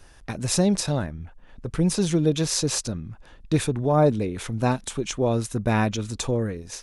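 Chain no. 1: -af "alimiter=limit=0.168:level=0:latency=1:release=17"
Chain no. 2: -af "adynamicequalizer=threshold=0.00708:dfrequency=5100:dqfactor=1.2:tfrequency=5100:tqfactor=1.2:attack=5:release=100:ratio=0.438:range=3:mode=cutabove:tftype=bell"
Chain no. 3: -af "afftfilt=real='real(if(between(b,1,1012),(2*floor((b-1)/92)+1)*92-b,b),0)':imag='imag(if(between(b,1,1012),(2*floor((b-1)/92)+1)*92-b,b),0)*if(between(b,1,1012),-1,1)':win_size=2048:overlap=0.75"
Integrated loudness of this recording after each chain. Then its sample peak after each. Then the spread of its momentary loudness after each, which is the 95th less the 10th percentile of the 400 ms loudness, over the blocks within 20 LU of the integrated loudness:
-26.5 LUFS, -24.5 LUFS, -22.0 LUFS; -15.5 dBFS, -6.5 dBFS, -6.5 dBFS; 11 LU, 13 LU, 13 LU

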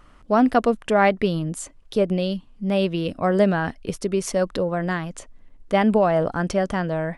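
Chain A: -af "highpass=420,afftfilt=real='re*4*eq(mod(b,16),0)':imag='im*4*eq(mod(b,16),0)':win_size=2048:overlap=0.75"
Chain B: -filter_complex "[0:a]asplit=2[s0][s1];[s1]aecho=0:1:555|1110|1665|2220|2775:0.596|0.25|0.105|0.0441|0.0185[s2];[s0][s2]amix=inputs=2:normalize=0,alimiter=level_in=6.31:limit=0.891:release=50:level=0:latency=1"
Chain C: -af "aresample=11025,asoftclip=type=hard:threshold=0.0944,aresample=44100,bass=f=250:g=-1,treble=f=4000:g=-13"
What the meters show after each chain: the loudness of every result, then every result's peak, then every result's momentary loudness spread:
-28.5 LUFS, -10.0 LUFS, -26.5 LUFS; -7.5 dBFS, -1.0 dBFS, -19.0 dBFS; 16 LU, 3 LU, 7 LU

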